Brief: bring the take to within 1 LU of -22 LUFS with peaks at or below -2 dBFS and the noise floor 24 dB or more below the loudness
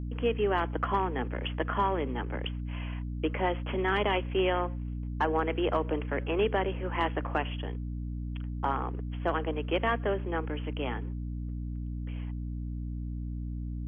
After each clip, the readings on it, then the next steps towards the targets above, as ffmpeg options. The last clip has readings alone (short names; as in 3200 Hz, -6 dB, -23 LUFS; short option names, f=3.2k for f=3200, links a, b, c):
hum 60 Hz; harmonics up to 300 Hz; hum level -33 dBFS; loudness -32.0 LUFS; peak -16.0 dBFS; loudness target -22.0 LUFS
-> -af "bandreject=f=60:t=h:w=6,bandreject=f=120:t=h:w=6,bandreject=f=180:t=h:w=6,bandreject=f=240:t=h:w=6,bandreject=f=300:t=h:w=6"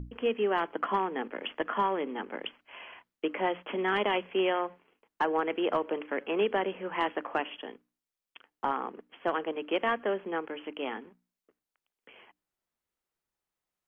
hum none; loudness -31.5 LUFS; peak -17.0 dBFS; loudness target -22.0 LUFS
-> -af "volume=9.5dB"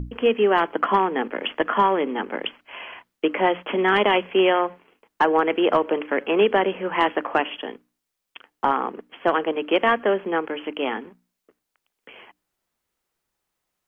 loudness -22.0 LUFS; peak -7.5 dBFS; noise floor -81 dBFS